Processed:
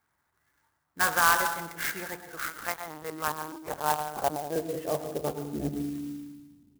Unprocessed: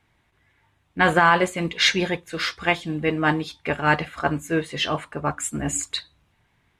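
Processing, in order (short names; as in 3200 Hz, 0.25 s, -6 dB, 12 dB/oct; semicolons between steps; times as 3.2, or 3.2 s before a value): tilt -4 dB/oct; reverb RT60 0.90 s, pre-delay 0.103 s, DRR 8.5 dB; 2.48–4.56 LPC vocoder at 8 kHz pitch kept; dynamic EQ 270 Hz, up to -6 dB, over -28 dBFS, Q 0.84; band-pass sweep 1400 Hz -> 260 Hz, 2.82–6.6; clock jitter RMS 0.062 ms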